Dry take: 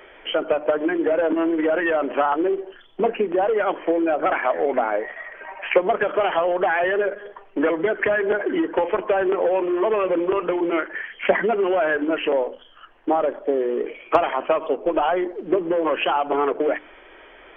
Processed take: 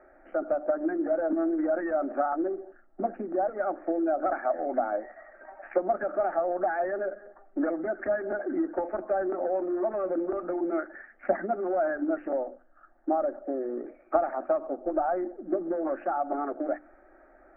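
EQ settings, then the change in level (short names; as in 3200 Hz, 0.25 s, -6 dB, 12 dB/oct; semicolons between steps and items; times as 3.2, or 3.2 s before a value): LPF 1300 Hz 24 dB/oct; fixed phaser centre 670 Hz, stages 8; -4.5 dB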